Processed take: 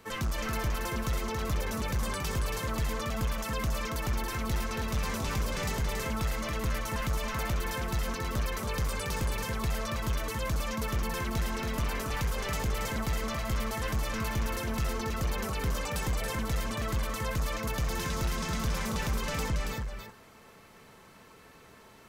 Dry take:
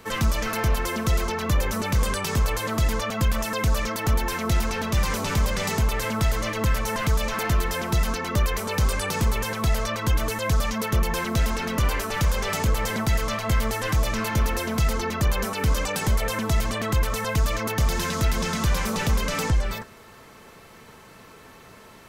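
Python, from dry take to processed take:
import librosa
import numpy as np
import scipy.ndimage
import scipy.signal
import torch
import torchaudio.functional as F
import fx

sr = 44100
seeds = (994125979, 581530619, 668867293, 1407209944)

y = np.clip(x, -10.0 ** (-18.5 / 20.0), 10.0 ** (-18.5 / 20.0))
y = y + 10.0 ** (-5.0 / 20.0) * np.pad(y, (int(278 * sr / 1000.0), 0))[:len(y)]
y = y * librosa.db_to_amplitude(-8.0)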